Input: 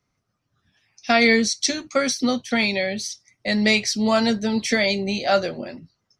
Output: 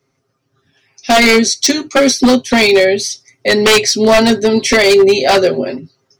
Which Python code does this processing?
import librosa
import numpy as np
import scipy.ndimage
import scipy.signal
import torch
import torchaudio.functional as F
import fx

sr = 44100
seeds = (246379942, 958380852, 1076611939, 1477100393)

p1 = fx.highpass(x, sr, hz=95.0, slope=6)
p2 = fx.peak_eq(p1, sr, hz=400.0, db=10.0, octaves=0.66)
p3 = p2 + 0.7 * np.pad(p2, (int(7.5 * sr / 1000.0), 0))[:len(p2)]
p4 = fx.rider(p3, sr, range_db=4, speed_s=2.0)
p5 = p3 + (p4 * librosa.db_to_amplitude(1.5))
p6 = 10.0 ** (-4.5 / 20.0) * (np.abs((p5 / 10.0 ** (-4.5 / 20.0) + 3.0) % 4.0 - 2.0) - 1.0)
y = p6 * librosa.db_to_amplitude(1.5)